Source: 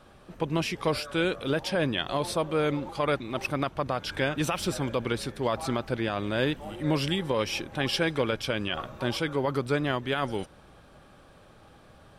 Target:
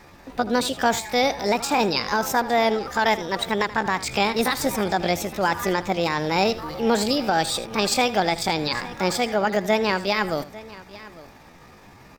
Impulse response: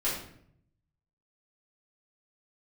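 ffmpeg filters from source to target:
-filter_complex "[0:a]asplit=2[a][b];[b]aecho=0:1:849:0.112[c];[a][c]amix=inputs=2:normalize=0,asetrate=66075,aresample=44100,atempo=0.66742,asplit=2[d][e];[e]aecho=0:1:80:0.158[f];[d][f]amix=inputs=2:normalize=0,volume=6dB"

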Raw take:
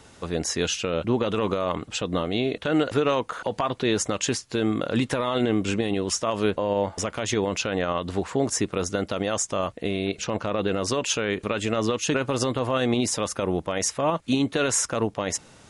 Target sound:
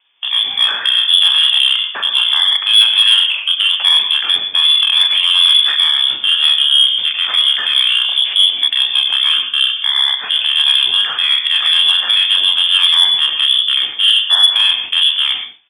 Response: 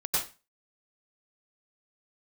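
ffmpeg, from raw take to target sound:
-filter_complex "[0:a]asplit=2[a][b];[b]adelay=32,volume=-2dB[c];[a][c]amix=inputs=2:normalize=0,acrossover=split=810[d][e];[d]crystalizer=i=6:c=0[f];[e]alimiter=limit=-19.5dB:level=0:latency=1:release=133[g];[f][g]amix=inputs=2:normalize=0,agate=range=-21dB:threshold=-32dB:ratio=16:detection=peak,highpass=f=110:p=1,asetrate=31183,aresample=44100,atempo=1.41421,asplit=2[h][i];[1:a]atrim=start_sample=2205[j];[i][j]afir=irnorm=-1:irlink=0,volume=-13.5dB[k];[h][k]amix=inputs=2:normalize=0,lowpass=f=3.1k:t=q:w=0.5098,lowpass=f=3.1k:t=q:w=0.6013,lowpass=f=3.1k:t=q:w=0.9,lowpass=f=3.1k:t=q:w=2.563,afreqshift=-3600,aemphasis=mode=production:type=bsi,acontrast=76"

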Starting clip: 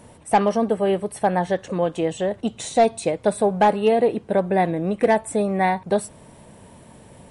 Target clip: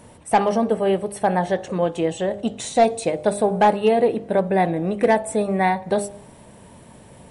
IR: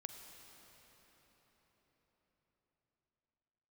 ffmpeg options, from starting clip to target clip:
-filter_complex "[0:a]bandreject=f=50.51:t=h:w=4,bandreject=f=101.02:t=h:w=4,bandreject=f=151.53:t=h:w=4,bandreject=f=202.04:t=h:w=4,bandreject=f=252.55:t=h:w=4,bandreject=f=303.06:t=h:w=4,bandreject=f=353.57:t=h:w=4,bandreject=f=404.08:t=h:w=4,bandreject=f=454.59:t=h:w=4,bandreject=f=505.1:t=h:w=4,bandreject=f=555.61:t=h:w=4,bandreject=f=606.12:t=h:w=4,bandreject=f=656.63:t=h:w=4,bandreject=f=707.14:t=h:w=4,bandreject=f=757.65:t=h:w=4,bandreject=f=808.16:t=h:w=4,bandreject=f=858.67:t=h:w=4,asplit=2[a][b];[1:a]atrim=start_sample=2205,afade=t=out:st=0.36:d=0.01,atrim=end_sample=16317[c];[b][c]afir=irnorm=-1:irlink=0,volume=-13dB[d];[a][d]amix=inputs=2:normalize=0"

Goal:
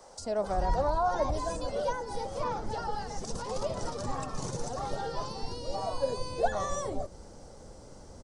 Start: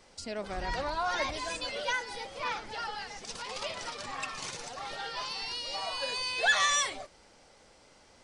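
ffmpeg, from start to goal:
-filter_complex "[0:a]asubboost=boost=9:cutoff=250,acrossover=split=110|860[a][b][c];[c]acompressor=threshold=-44dB:ratio=6[d];[a][b][d]amix=inputs=3:normalize=0,firequalizer=gain_entry='entry(270,0);entry(530,10);entry(810,11);entry(2300,-8);entry(6000,6)':delay=0.05:min_phase=1"

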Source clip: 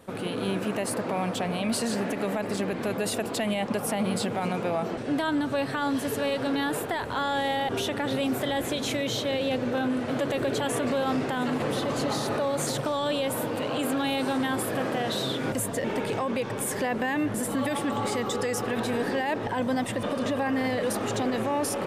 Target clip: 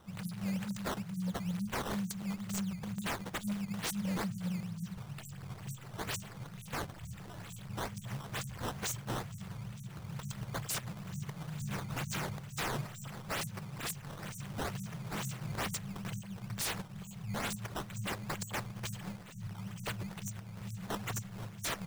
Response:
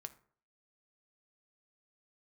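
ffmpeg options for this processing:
-filter_complex "[0:a]asplit=2[a][b];[b]equalizer=f=125:t=o:w=1:g=-11,equalizer=f=250:t=o:w=1:g=-10,equalizer=f=500:t=o:w=1:g=8,equalizer=f=1k:t=o:w=1:g=-3,equalizer=f=2k:t=o:w=1:g=7,equalizer=f=4k:t=o:w=1:g=5,equalizer=f=8k:t=o:w=1:g=11[c];[1:a]atrim=start_sample=2205[d];[c][d]afir=irnorm=-1:irlink=0,volume=-0.5dB[e];[a][e]amix=inputs=2:normalize=0,afftfilt=real='re*(1-between(b*sr/4096,210,5600))':imag='im*(1-between(b*sr/4096,210,5600))':win_size=4096:overlap=0.75,acrusher=samples=11:mix=1:aa=0.000001:lfo=1:lforange=17.6:lforate=2.2,aeval=exprs='0.0501*(abs(mod(val(0)/0.0501+3,4)-2)-1)':c=same,volume=-4dB"

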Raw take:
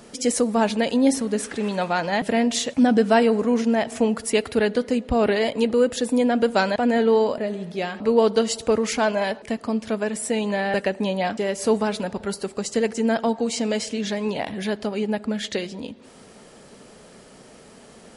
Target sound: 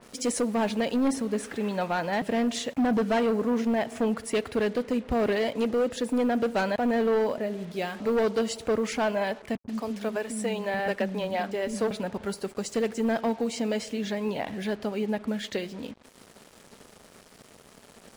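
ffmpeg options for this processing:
-filter_complex "[0:a]volume=16.5dB,asoftclip=hard,volume=-16.5dB,asettb=1/sr,asplit=3[a][b][c];[a]atrim=end=9.554[d];[b]atrim=start=9.55:end=11.91,asetpts=PTS-STARTPTS,afade=t=in:d=0.004:c=qsin,afade=t=out:st=2.356:d=0.004:c=qsin,acrossover=split=260[e][f];[f]adelay=140[g];[e][g]amix=inputs=2:normalize=0,atrim=end_sample=104076[h];[c]atrim=start=11.906[i];[d][h]acrossfade=d=0.004:c1=hsin:c2=qsin[j];[j][i]acrossfade=d=0.004:c1=qsin:c2=hsin,acrusher=bits=6:mix=0:aa=0.5,adynamicequalizer=threshold=0.00631:dfrequency=3500:dqfactor=0.7:tfrequency=3500:tqfactor=0.7:attack=5:release=100:ratio=0.375:range=3:mode=cutabove:tftype=highshelf,volume=-4dB"

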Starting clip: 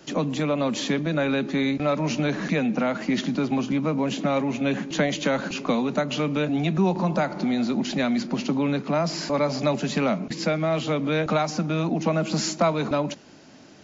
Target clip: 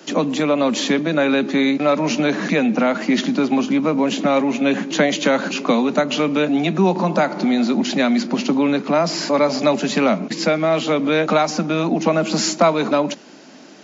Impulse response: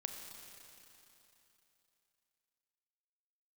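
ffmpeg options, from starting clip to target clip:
-af "highpass=f=190:w=0.5412,highpass=f=190:w=1.3066,volume=7dB"

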